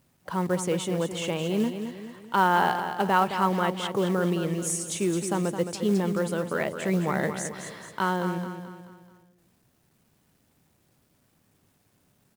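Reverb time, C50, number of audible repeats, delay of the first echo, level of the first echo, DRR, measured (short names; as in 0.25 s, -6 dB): none, none, 4, 0.216 s, -8.5 dB, none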